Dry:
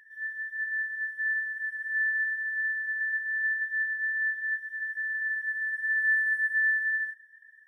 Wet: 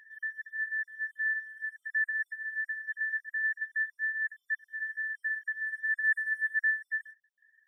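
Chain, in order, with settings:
time-frequency cells dropped at random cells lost 20%
reverb reduction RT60 1.5 s

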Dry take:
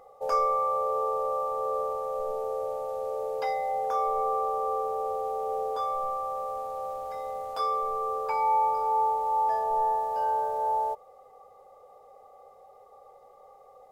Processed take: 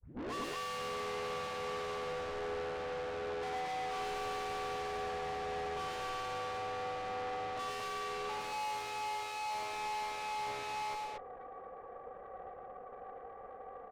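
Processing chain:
turntable start at the beginning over 0.34 s
low-pass filter 2,000 Hz 24 dB per octave
in parallel at −1 dB: downward compressor, threshold −36 dBFS, peak gain reduction 14 dB
on the sum: frequency shifter −25 Hz
tube saturation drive 39 dB, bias 0.6
on a send: loudspeakers that aren't time-aligned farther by 38 metres −4 dB, 79 metres −3 dB
on the sum: slew-rate limiting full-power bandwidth 55 Hz
level −1 dB

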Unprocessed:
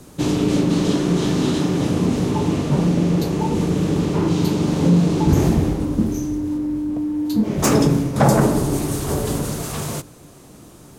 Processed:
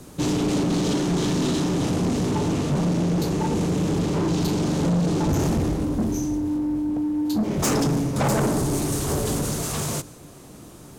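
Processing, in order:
dynamic equaliser 6,800 Hz, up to +4 dB, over −45 dBFS, Q 0.97
soft clipping −18 dBFS, distortion −10 dB

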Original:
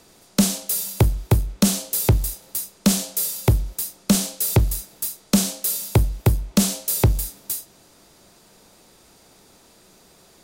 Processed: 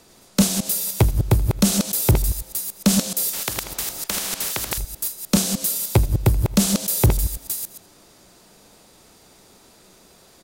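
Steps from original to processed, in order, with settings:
delay that plays each chunk backwards 101 ms, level −4.5 dB
single-tap delay 80 ms −20.5 dB
0:03.33–0:04.78: every bin compressed towards the loudest bin 4 to 1

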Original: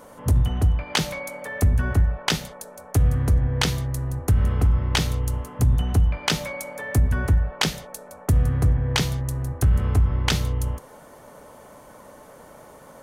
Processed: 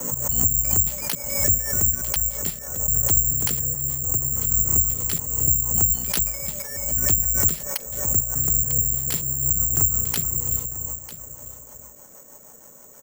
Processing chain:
slices reordered back to front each 144 ms, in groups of 2
mains-hum notches 60/120 Hz
in parallel at −2 dB: brickwall limiter −20 dBFS, peak gain reduction 10.5 dB
on the sum: rotating-speaker cabinet horn 6.3 Hz
on a send: single-tap delay 948 ms −14 dB
on the sum: bad sample-rate conversion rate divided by 6×, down filtered, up zero stuff
background raised ahead of every attack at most 57 dB per second
level −11 dB

